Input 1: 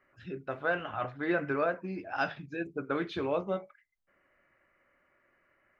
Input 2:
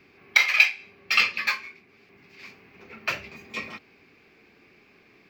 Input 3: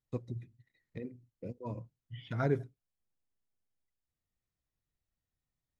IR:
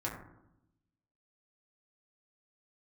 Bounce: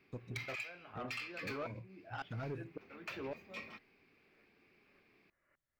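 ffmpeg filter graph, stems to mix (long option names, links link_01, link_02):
-filter_complex "[0:a]aeval=exprs='val(0)*pow(10,-30*if(lt(mod(-1.8*n/s,1),2*abs(-1.8)/1000),1-mod(-1.8*n/s,1)/(2*abs(-1.8)/1000),(mod(-1.8*n/s,1)-2*abs(-1.8)/1000)/(1-2*abs(-1.8)/1000))/20)':channel_layout=same,volume=-3.5dB[link_01];[1:a]equalizer=frequency=6800:width_type=o:width=0.54:gain=-6,acompressor=threshold=-26dB:ratio=6,volume=-12.5dB[link_02];[2:a]volume=-4dB[link_03];[link_01][link_03]amix=inputs=2:normalize=0,alimiter=level_in=5.5dB:limit=-24dB:level=0:latency=1:release=116,volume=-5.5dB,volume=0dB[link_04];[link_02][link_04]amix=inputs=2:normalize=0,asoftclip=type=tanh:threshold=-34.5dB"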